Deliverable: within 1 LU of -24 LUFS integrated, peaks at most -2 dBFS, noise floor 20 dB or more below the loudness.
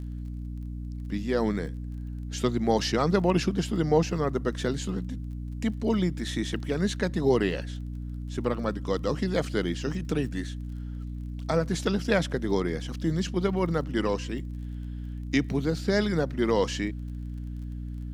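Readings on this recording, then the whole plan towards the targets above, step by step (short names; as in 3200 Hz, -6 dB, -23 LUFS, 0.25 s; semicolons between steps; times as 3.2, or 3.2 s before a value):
ticks 32/s; hum 60 Hz; harmonics up to 300 Hz; hum level -32 dBFS; loudness -29.0 LUFS; peak -9.0 dBFS; loudness target -24.0 LUFS
-> de-click; de-hum 60 Hz, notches 5; gain +5 dB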